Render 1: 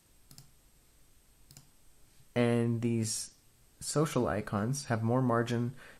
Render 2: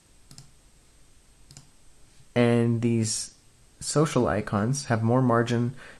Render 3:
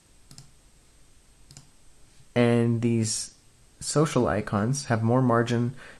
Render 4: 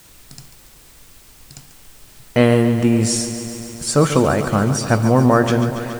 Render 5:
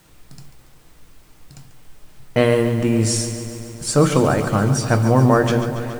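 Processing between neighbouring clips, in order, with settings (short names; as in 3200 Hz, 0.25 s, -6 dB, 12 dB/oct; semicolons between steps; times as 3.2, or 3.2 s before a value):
LPF 10000 Hz 24 dB/oct; gain +7 dB
nothing audible
in parallel at -4 dB: requantised 8-bit, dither triangular; on the sum: lo-fi delay 0.141 s, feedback 80%, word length 7-bit, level -11 dB; gain +3.5 dB
reverb RT60 0.30 s, pre-delay 6 ms, DRR 9.5 dB; mismatched tape noise reduction decoder only; gain -1.5 dB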